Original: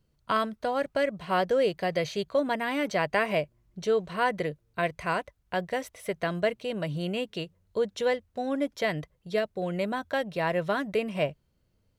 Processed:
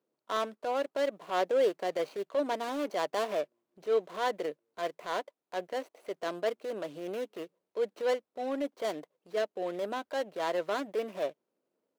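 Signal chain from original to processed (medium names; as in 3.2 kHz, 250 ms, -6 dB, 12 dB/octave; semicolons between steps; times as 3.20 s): median filter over 25 samples; high-pass 300 Hz 24 dB/octave; transient shaper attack -6 dB, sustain 0 dB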